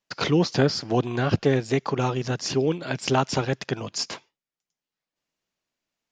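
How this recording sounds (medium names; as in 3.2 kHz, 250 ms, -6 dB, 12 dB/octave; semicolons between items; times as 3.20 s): noise floor -91 dBFS; spectral tilt -5.5 dB/octave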